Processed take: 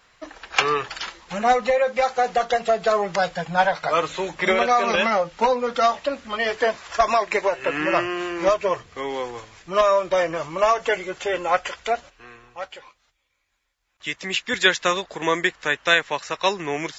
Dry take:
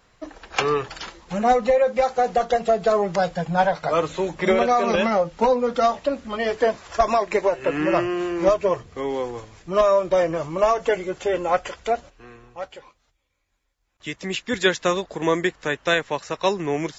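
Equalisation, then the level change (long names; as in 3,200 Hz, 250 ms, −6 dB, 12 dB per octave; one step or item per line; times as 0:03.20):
tilt shelving filter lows −8 dB, about 930 Hz
high-shelf EQ 3,900 Hz −9.5 dB
+2.0 dB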